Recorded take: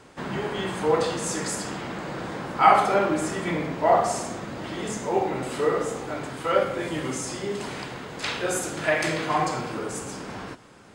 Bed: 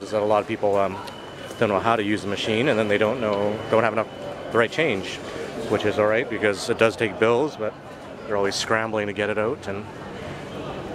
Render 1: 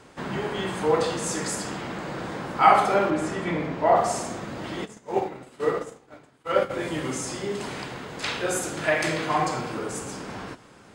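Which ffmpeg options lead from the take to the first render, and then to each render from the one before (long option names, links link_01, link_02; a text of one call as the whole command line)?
ffmpeg -i in.wav -filter_complex "[0:a]asettb=1/sr,asplit=3[link_01][link_02][link_03];[link_01]atrim=end=3.104[link_04];[link_02]atrim=start=3.1:end=3.96,asetpts=PTS-STARTPTS,afade=type=in:duration=0.004:curve=qsin,afade=type=out:start_time=0.856:duration=0.004:curve=qsin,highshelf=frequency=6600:gain=-11[link_05];[link_03]atrim=start=3.956[link_06];[link_04][link_05]acrossfade=duration=0.004:curve1=hsin:curve2=qsin[link_07];[link_07][link_06]acrossfade=duration=0.004:curve1=qsin:curve2=hsin,asplit=3[link_08][link_09][link_10];[link_08]afade=type=out:start_time=4.84:duration=0.02[link_11];[link_09]agate=range=-33dB:threshold=-21dB:ratio=3:release=100:detection=peak,afade=type=in:start_time=4.84:duration=0.02,afade=type=out:start_time=6.69:duration=0.02[link_12];[link_10]afade=type=in:start_time=6.69:duration=0.02[link_13];[link_11][link_12][link_13]amix=inputs=3:normalize=0" out.wav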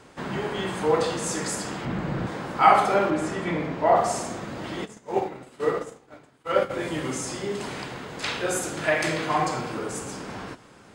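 ffmpeg -i in.wav -filter_complex "[0:a]asettb=1/sr,asplit=3[link_01][link_02][link_03];[link_01]atrim=end=1.854[link_04];[link_02]atrim=start=1.85:end=2.27,asetpts=PTS-STARTPTS,afade=type=in:duration=0.004:curve=qsin,afade=type=out:start_time=0.416:duration=0.004:curve=qsin,bass=frequency=250:gain=11,treble=frequency=4000:gain=-7[link_05];[link_03]atrim=start=2.266[link_06];[link_04][link_05]acrossfade=duration=0.004:curve1=hsin:curve2=qsin[link_07];[link_07][link_06]acrossfade=duration=0.004:curve1=qsin:curve2=hsin" out.wav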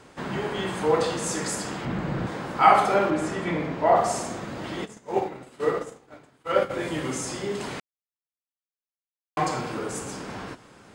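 ffmpeg -i in.wav -filter_complex "[0:a]asplit=3[link_01][link_02][link_03];[link_01]atrim=end=7.8,asetpts=PTS-STARTPTS,afade=type=out:start_time=7.796:duration=0.004:curve=hsin[link_04];[link_02]atrim=start=7.8:end=9.37,asetpts=PTS-STARTPTS,volume=0[link_05];[link_03]atrim=start=9.37,asetpts=PTS-STARTPTS,afade=type=in:duration=0.004:curve=hsin[link_06];[link_04][link_05][link_06]concat=n=3:v=0:a=1" out.wav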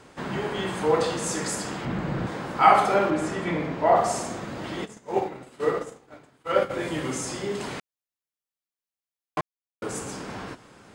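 ffmpeg -i in.wav -filter_complex "[0:a]asplit=3[link_01][link_02][link_03];[link_01]atrim=end=9.41,asetpts=PTS-STARTPTS,afade=type=out:start_time=9.406:duration=0.004:curve=hsin[link_04];[link_02]atrim=start=9.41:end=9.82,asetpts=PTS-STARTPTS,volume=0[link_05];[link_03]atrim=start=9.82,asetpts=PTS-STARTPTS,afade=type=in:duration=0.004:curve=hsin[link_06];[link_04][link_05][link_06]concat=n=3:v=0:a=1" out.wav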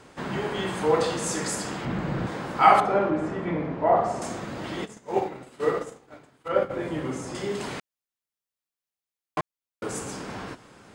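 ffmpeg -i in.wav -filter_complex "[0:a]asettb=1/sr,asplit=3[link_01][link_02][link_03];[link_01]atrim=end=2.804[link_04];[link_02]atrim=start=2.8:end=4.22,asetpts=PTS-STARTPTS,afade=type=in:duration=0.004:curve=qsin,afade=type=out:start_time=1.416:duration=0.004:curve=qsin,lowpass=frequency=1200:poles=1[link_05];[link_03]atrim=start=4.216[link_06];[link_04][link_05]acrossfade=duration=0.004:curve1=hsin:curve2=qsin[link_07];[link_07][link_06]acrossfade=duration=0.004:curve1=qsin:curve2=hsin,asettb=1/sr,asplit=3[link_08][link_09][link_10];[link_08]atrim=end=6.484[link_11];[link_09]atrim=start=6.48:end=7.35,asetpts=PTS-STARTPTS,afade=type=in:duration=0.004:curve=qsin,afade=type=out:start_time=0.866:duration=0.004:curve=qsin,highshelf=frequency=2100:gain=-11.5[link_12];[link_10]atrim=start=7.346[link_13];[link_11][link_12]acrossfade=duration=0.004:curve1=hsin:curve2=qsin[link_14];[link_14][link_13]acrossfade=duration=0.004:curve1=qsin:curve2=hsin" out.wav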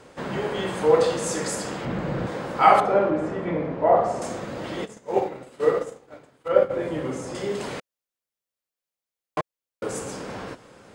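ffmpeg -i in.wav -af "equalizer=frequency=520:width=3:gain=7" out.wav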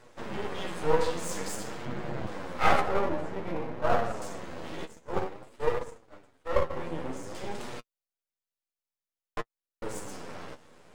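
ffmpeg -i in.wav -af "aeval=exprs='max(val(0),0)':channel_layout=same,flanger=delay=8.2:depth=4.4:regen=28:speed=0.52:shape=sinusoidal" out.wav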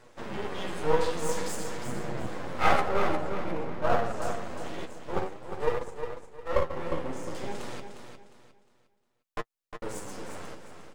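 ffmpeg -i in.wav -af "aecho=1:1:356|712|1068|1424:0.398|0.123|0.0383|0.0119" out.wav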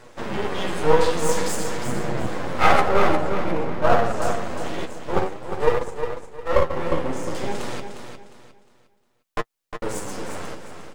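ffmpeg -i in.wav -af "volume=8.5dB,alimiter=limit=-2dB:level=0:latency=1" out.wav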